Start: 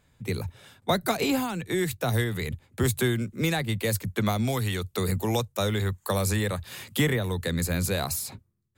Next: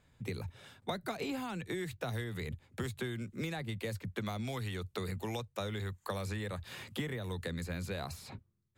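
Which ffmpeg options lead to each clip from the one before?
-filter_complex "[0:a]highshelf=f=9.5k:g=-9,acrossover=split=1500|3900[a][b][c];[a]acompressor=threshold=-34dB:ratio=4[d];[b]acompressor=threshold=-44dB:ratio=4[e];[c]acompressor=threshold=-52dB:ratio=4[f];[d][e][f]amix=inputs=3:normalize=0,volume=-3dB"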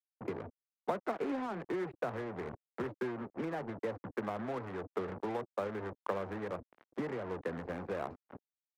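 -filter_complex "[0:a]adynamicsmooth=sensitivity=3.5:basefreq=650,acrusher=bits=6:mix=0:aa=0.5,acrossover=split=240 2200:gain=0.141 1 0.224[a][b][c];[a][b][c]amix=inputs=3:normalize=0,volume=5dB"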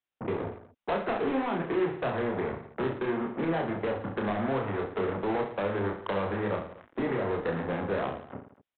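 -af "aresample=8000,asoftclip=type=hard:threshold=-34.5dB,aresample=44100,aecho=1:1:30|67.5|114.4|173|246.2:0.631|0.398|0.251|0.158|0.1,volume=8dB"

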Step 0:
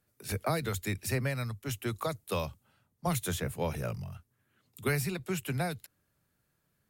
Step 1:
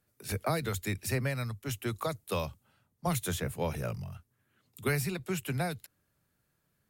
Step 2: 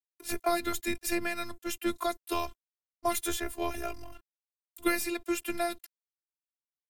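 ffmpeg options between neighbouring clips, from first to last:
-af anull
-af "aeval=exprs='sgn(val(0))*max(abs(val(0))-0.002,0)':c=same,afftfilt=real='hypot(re,im)*cos(PI*b)':imag='0':win_size=512:overlap=0.75,volume=7dB"

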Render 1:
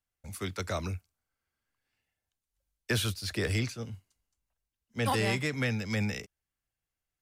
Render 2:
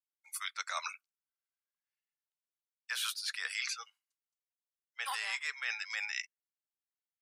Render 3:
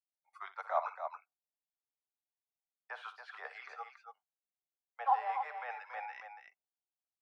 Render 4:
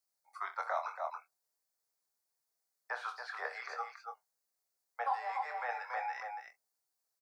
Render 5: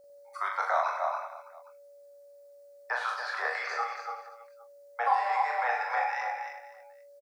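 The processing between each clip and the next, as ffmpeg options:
-af "highpass=f=1k:w=0.5412,highpass=f=1k:w=1.3066,afftdn=nr=24:nf=-51,areverse,acompressor=threshold=-42dB:ratio=10,areverse,volume=8.5dB"
-af "agate=range=-17dB:threshold=-57dB:ratio=16:detection=peak,lowpass=f=760:t=q:w=4.9,aecho=1:1:61|280:0.2|0.398,volume=4.5dB"
-filter_complex "[0:a]firequalizer=gain_entry='entry(280,0);entry(470,7);entry(1900,4);entry(3000,-6);entry(4400,9)':delay=0.05:min_phase=1,acrossover=split=1900[a][b];[a]acompressor=threshold=-37dB:ratio=6[c];[c][b]amix=inputs=2:normalize=0,asplit=2[d][e];[e]adelay=25,volume=-7dB[f];[d][f]amix=inputs=2:normalize=0,volume=1.5dB"
-filter_complex "[0:a]lowshelf=f=320:g=-7,aeval=exprs='val(0)+0.000794*sin(2*PI*570*n/s)':c=same,asplit=2[a][b];[b]aecho=0:1:40|100|190|325|527.5:0.631|0.398|0.251|0.158|0.1[c];[a][c]amix=inputs=2:normalize=0,volume=7.5dB"

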